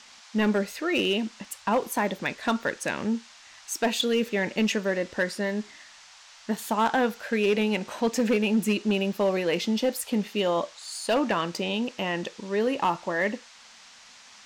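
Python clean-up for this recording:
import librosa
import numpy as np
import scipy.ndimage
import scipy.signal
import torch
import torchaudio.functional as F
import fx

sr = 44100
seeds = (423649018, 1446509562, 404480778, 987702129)

y = fx.fix_declip(x, sr, threshold_db=-17.0)
y = fx.noise_reduce(y, sr, print_start_s=13.56, print_end_s=14.06, reduce_db=21.0)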